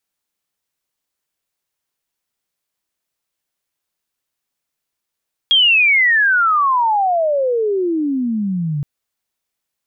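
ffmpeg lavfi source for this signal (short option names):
-f lavfi -i "aevalsrc='pow(10,(-8.5-9*t/3.32)/20)*sin(2*PI*3300*3.32/log(140/3300)*(exp(log(140/3300)*t/3.32)-1))':d=3.32:s=44100"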